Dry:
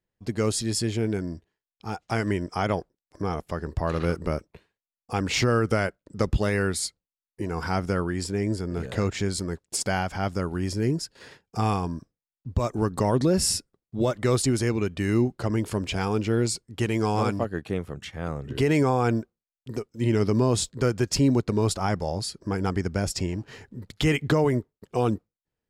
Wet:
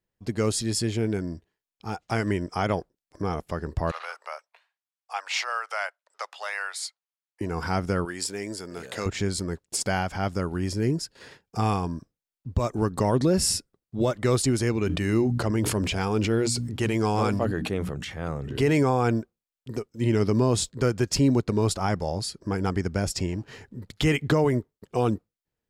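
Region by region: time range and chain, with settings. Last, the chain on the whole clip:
3.91–7.41 steep high-pass 700 Hz + high shelf 7700 Hz -10 dB
8.05–9.06 HPF 630 Hz 6 dB/oct + high shelf 4500 Hz +7 dB
14.83–18.78 notches 60/120/180/240/300 Hz + sustainer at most 31 dB/s
whole clip: dry

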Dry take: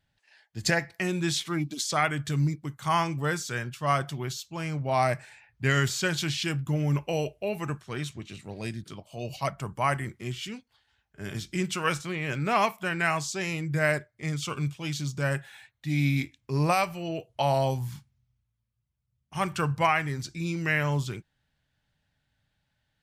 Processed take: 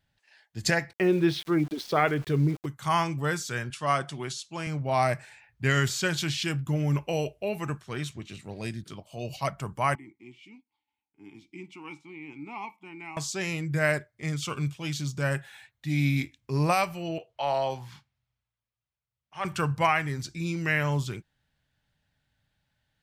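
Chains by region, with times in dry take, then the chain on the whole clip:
0.93–2.66 running mean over 6 samples + bell 420 Hz +12.5 dB 0.8 oct + sample gate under -41.5 dBFS
3.7–4.67 HPF 160 Hz + careless resampling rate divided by 2×, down none, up filtered + mismatched tape noise reduction encoder only
9.95–13.17 vowel filter u + high shelf 6100 Hz +9.5 dB
17.18–19.45 three-band isolator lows -14 dB, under 420 Hz, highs -17 dB, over 5100 Hz + transient shaper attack -5 dB, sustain +3 dB
whole clip: dry

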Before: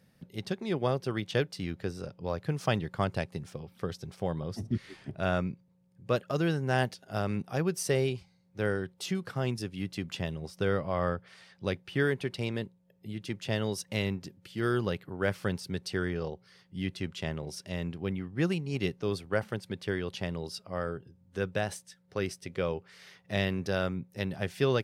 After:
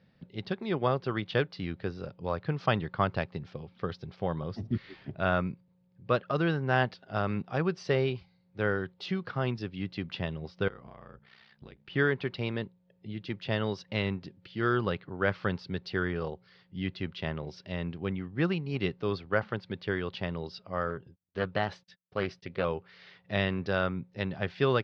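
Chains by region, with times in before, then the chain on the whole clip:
10.68–11.9 notch 570 Hz, Q 5.7 + compressor 10:1, threshold -41 dBFS + ring modulator 31 Hz
20.9–22.65 gate -57 dBFS, range -34 dB + Doppler distortion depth 0.27 ms
whole clip: steep low-pass 4600 Hz 36 dB/oct; dynamic EQ 1200 Hz, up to +6 dB, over -48 dBFS, Q 1.5

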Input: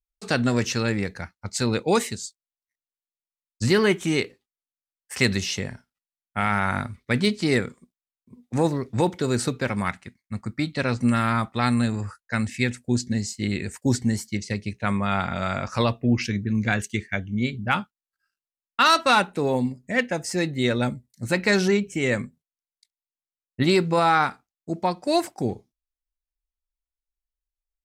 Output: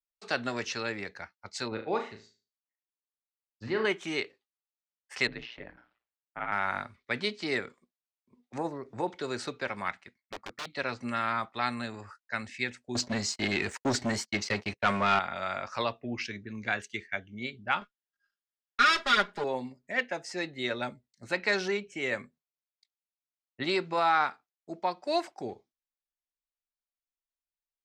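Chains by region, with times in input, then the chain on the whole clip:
1.68–3.85 tape spacing loss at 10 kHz 31 dB + flutter echo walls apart 6.3 m, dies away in 0.35 s
5.27–6.52 ring modulator 59 Hz + air absorption 420 m + sustainer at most 150 dB/s
8.58–9.08 bell 3500 Hz -12 dB 1.8 oct + upward compressor, threshold -25 dBFS
10.18–10.7 LPF 3300 Hz 6 dB/oct + wrapped overs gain 25 dB
12.95–15.19 expander -40 dBFS + notch 3500 Hz, Q 25 + sample leveller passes 3
17.81–19.44 minimum comb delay 0.58 ms + comb 4.9 ms, depth 93%
whole clip: three-band isolator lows -15 dB, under 370 Hz, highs -21 dB, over 6100 Hz; notch 490 Hz, Q 12; gain -5 dB

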